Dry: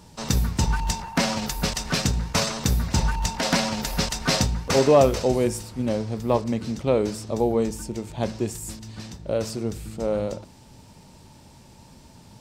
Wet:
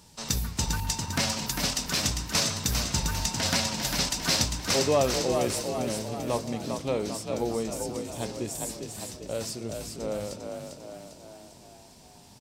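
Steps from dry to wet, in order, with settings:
high-shelf EQ 2,200 Hz +9.5 dB
echo with shifted repeats 399 ms, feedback 54%, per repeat +39 Hz, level −5.5 dB
level −8.5 dB

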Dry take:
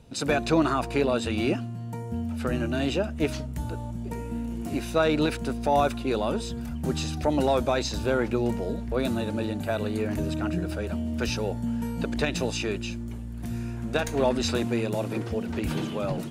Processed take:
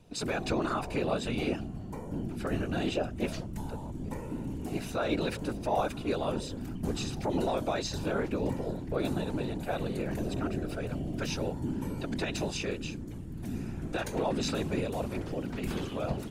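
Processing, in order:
brickwall limiter −16 dBFS, peak gain reduction 6 dB
random phases in short frames
level −4.5 dB

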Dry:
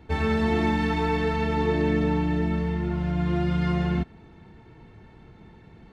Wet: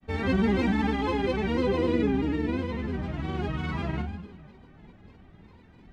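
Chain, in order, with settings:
coupled-rooms reverb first 0.54 s, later 2.4 s, from −18 dB, DRR −0.5 dB
granular cloud, spray 32 ms, pitch spread up and down by 3 semitones
level −5 dB

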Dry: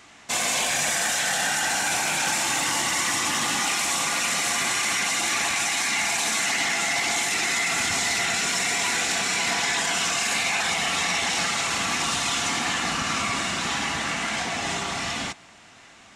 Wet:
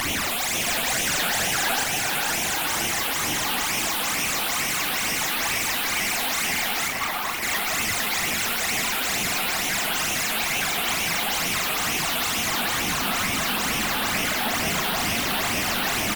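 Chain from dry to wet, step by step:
sign of each sample alone
0:00.66–0:01.84: bit-depth reduction 6 bits, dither triangular
0:06.88–0:07.42: notch filter 1,100 Hz, Q 8.2
brickwall limiter −30 dBFS, peak gain reduction 23 dB
sine wavefolder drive 17 dB, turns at −20.5 dBFS
all-pass phaser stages 12, 2.2 Hz, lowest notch 100–1,500 Hz
double-tracking delay 40 ms −7 dB
tape delay 515 ms, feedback 81%, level −5 dB, low-pass 2,400 Hz
pitch modulation by a square or saw wave saw up 6.5 Hz, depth 160 cents
level +2.5 dB

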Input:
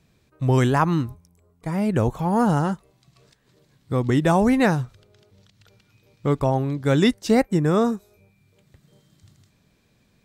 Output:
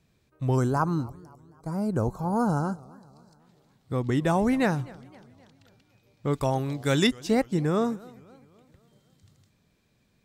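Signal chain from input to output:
0:00.55–0:03.40: gain on a spectral selection 1,600–3,900 Hz −15 dB
0:06.33–0:07.07: high-shelf EQ 2,100 Hz +11 dB
feedback echo with a swinging delay time 259 ms, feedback 50%, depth 194 cents, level −22.5 dB
level −5.5 dB

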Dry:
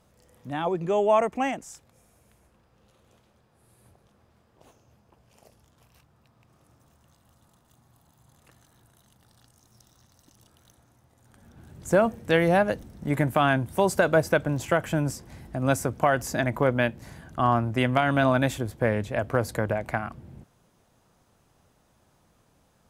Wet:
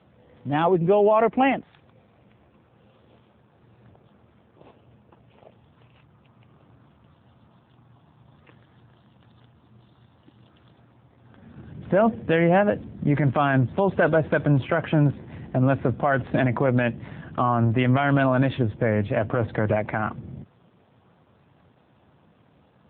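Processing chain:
low-shelf EQ 99 Hz +3.5 dB
brickwall limiter −18 dBFS, peak gain reduction 10.5 dB
level +8 dB
AMR narrowband 7.4 kbit/s 8,000 Hz

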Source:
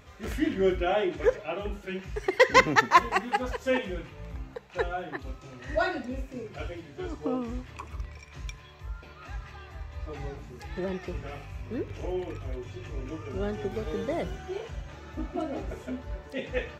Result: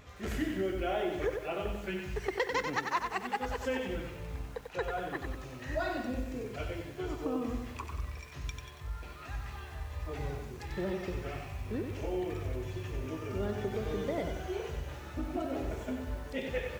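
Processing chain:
downward compressor 4 to 1, threshold −30 dBFS, peak gain reduction 15.5 dB
feedback echo at a low word length 93 ms, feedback 55%, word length 9 bits, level −5.5 dB
level −1 dB

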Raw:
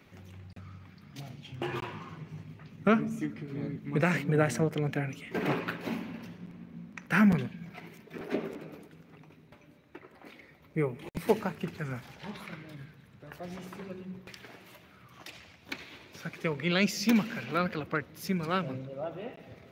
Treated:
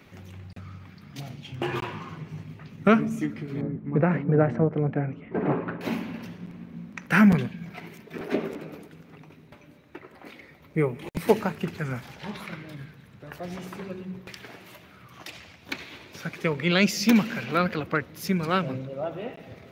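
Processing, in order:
0:03.61–0:05.81: low-pass filter 1,100 Hz 12 dB per octave
level +5.5 dB

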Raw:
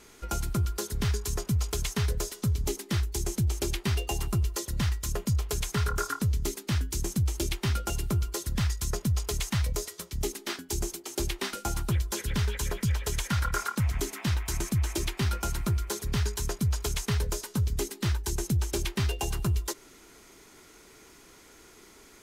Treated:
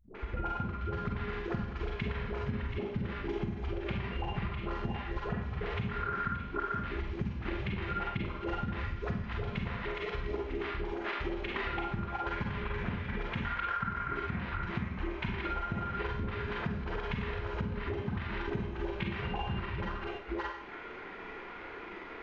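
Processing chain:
delay that plays each chunk backwards 370 ms, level −1.5 dB
inverse Chebyshev low-pass filter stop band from 9,500 Hz, stop band 70 dB
low-shelf EQ 360 Hz −10.5 dB
all-pass dispersion highs, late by 149 ms, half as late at 310 Hz
transient designer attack +7 dB, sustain −10 dB
four-comb reverb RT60 0.51 s, combs from 32 ms, DRR −2 dB
downward compressor 6 to 1, threshold −41 dBFS, peak gain reduction 20.5 dB
level +8 dB

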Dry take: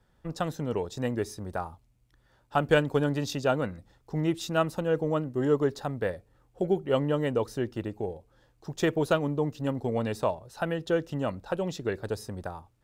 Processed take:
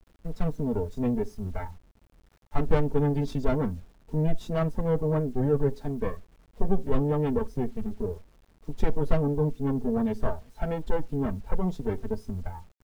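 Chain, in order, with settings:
lower of the sound and its delayed copy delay 4.5 ms
noise reduction from a noise print of the clip's start 9 dB
spectral tilt −4 dB per octave
in parallel at +1 dB: brickwall limiter −22 dBFS, peak gain reduction 19.5 dB
on the sum: bit reduction 9 bits
level −6.5 dB

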